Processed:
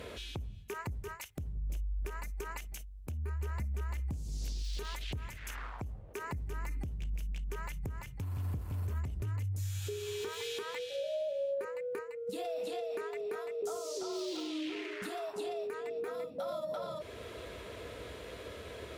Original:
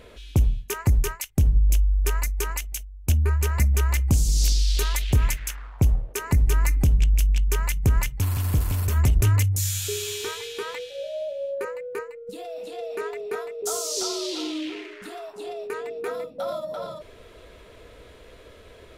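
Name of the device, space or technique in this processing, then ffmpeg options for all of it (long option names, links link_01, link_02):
podcast mastering chain: -af "highpass=frequency=61:width=0.5412,highpass=frequency=61:width=1.3066,deesser=0.95,acompressor=threshold=-38dB:ratio=2.5,alimiter=level_in=8.5dB:limit=-24dB:level=0:latency=1:release=487,volume=-8.5dB,volume=3.5dB" -ar 44100 -c:a libmp3lame -b:a 112k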